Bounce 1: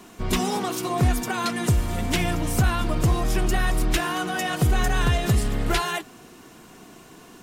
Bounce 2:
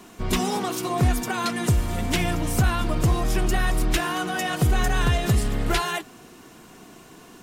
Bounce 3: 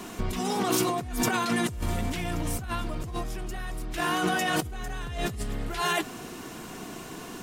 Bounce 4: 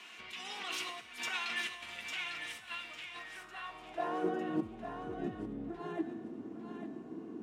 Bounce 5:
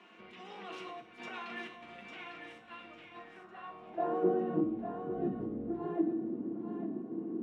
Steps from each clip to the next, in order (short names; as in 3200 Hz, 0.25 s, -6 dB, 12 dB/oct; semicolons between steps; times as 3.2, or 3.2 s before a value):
nothing audible
negative-ratio compressor -30 dBFS, ratio -1
band-pass sweep 2600 Hz -> 280 Hz, 3.08–4.55; resonator 110 Hz, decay 0.93 s, harmonics all, mix 70%; thinning echo 0.851 s, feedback 24%, level -6.5 dB; gain +9 dB
band-pass 290 Hz, Q 0.67; shoebox room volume 320 m³, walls furnished, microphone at 0.87 m; gain +4.5 dB